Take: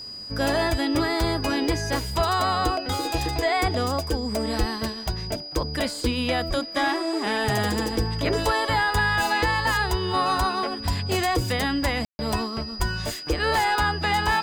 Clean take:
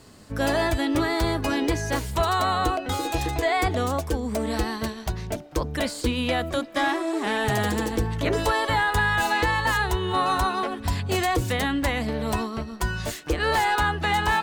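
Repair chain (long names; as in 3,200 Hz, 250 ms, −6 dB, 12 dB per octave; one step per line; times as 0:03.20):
notch filter 4,900 Hz, Q 30
0:04.59–0:04.71: high-pass filter 140 Hz 24 dB per octave
0:06.48–0:06.60: high-pass filter 140 Hz 24 dB per octave
0:12.78–0:12.90: high-pass filter 140 Hz 24 dB per octave
ambience match 0:12.05–0:12.19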